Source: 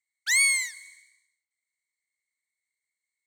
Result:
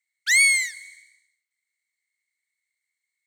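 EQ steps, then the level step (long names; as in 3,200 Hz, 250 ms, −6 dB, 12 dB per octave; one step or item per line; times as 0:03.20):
high-pass filter 1,500 Hz 24 dB per octave
high-shelf EQ 3,900 Hz −6 dB
+7.0 dB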